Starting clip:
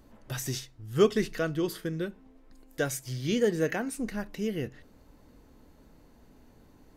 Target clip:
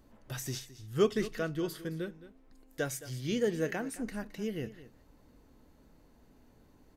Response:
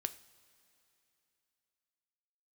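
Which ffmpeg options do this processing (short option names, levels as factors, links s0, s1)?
-af "aecho=1:1:217:0.158,volume=0.596"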